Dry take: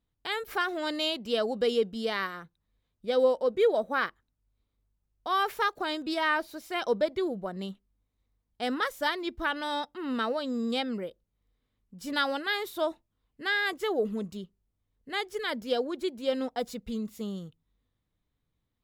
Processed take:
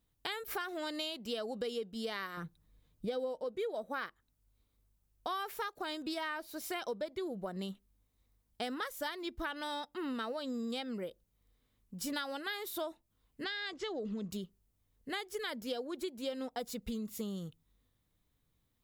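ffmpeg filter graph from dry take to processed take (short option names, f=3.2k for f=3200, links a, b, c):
-filter_complex "[0:a]asettb=1/sr,asplit=3[a][b][c];[a]atrim=end=2.374[d];[b]atrim=start=2.37:end=3.44,asetpts=PTS-STARTPTS,afade=t=in:d=0.004:c=qsin,afade=t=out:st=1.066:d=0.004:c=qsin,lowshelf=f=420:g=8,aecho=1:1:6.5:0.32,atrim=end_sample=47187[e];[c]atrim=start=3.436[f];[d][e]acrossfade=d=0.004:c1=hsin:c2=qsin[g];[g][f]acrossfade=d=0.004:c1=qsin:c2=hsin,asettb=1/sr,asplit=3[h][i][j];[h]atrim=end=13.444[k];[i]atrim=start=13.44:end=14.31,asetpts=PTS-STARTPTS,afade=t=in:d=0.004:c=qsin,afade=t=out:st=0.866:d=0.004:c=qsin,lowpass=f=5.9k:w=0.5412,lowpass=f=5.9k:w=1.3066,acrossover=split=210|3000[l][m][n];[m]acompressor=threshold=-38dB:ratio=2.5:attack=3.2:release=140:knee=2.83:detection=peak[o];[l][o][n]amix=inputs=3:normalize=0[p];[j]atrim=start=14.306[q];[k][p]acrossfade=d=0.004:c1=hsin:c2=qsin[r];[r][q]acrossfade=d=0.004:c1=qsin:c2=hsin,highshelf=f=6.8k:g=9,acompressor=threshold=-38dB:ratio=6,volume=2dB"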